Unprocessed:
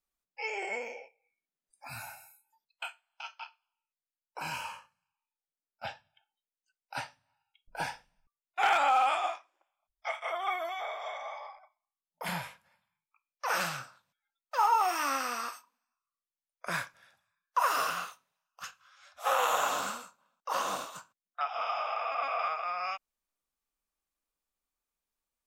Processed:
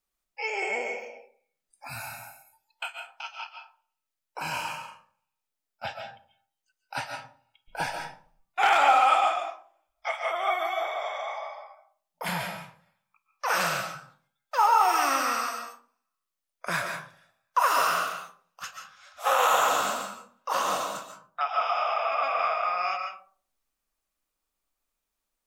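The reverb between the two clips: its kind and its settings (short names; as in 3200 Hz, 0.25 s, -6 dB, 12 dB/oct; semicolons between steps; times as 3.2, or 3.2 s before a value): digital reverb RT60 0.48 s, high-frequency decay 0.4×, pre-delay 0.1 s, DRR 4 dB; gain +4.5 dB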